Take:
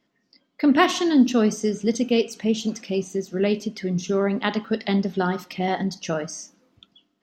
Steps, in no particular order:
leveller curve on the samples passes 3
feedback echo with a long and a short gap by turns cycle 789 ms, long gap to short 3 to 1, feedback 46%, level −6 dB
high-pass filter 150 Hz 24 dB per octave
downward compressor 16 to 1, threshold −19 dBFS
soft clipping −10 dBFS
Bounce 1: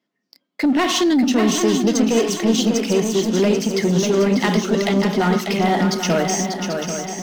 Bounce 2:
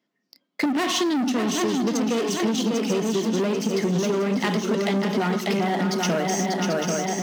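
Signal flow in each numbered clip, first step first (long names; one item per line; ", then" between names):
downward compressor, then leveller curve on the samples, then high-pass filter, then soft clipping, then feedback echo with a long and a short gap by turns
leveller curve on the samples, then feedback echo with a long and a short gap by turns, then soft clipping, then high-pass filter, then downward compressor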